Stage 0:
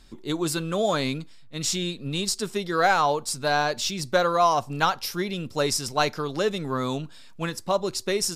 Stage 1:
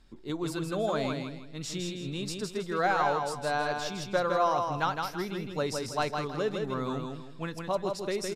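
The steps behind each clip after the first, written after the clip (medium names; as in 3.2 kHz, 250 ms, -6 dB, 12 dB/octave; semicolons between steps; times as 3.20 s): treble shelf 3.6 kHz -9.5 dB; feedback delay 161 ms, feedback 32%, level -4.5 dB; trim -6 dB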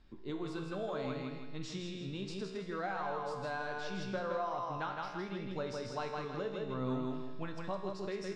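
compression 3:1, threshold -35 dBFS, peak gain reduction 10.5 dB; distance through air 130 m; feedback comb 64 Hz, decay 1.2 s, harmonics all, mix 80%; trim +9 dB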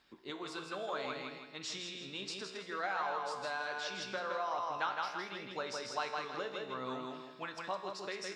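high-pass 1.1 kHz 6 dB/octave; harmonic-percussive split percussive +5 dB; trim +3.5 dB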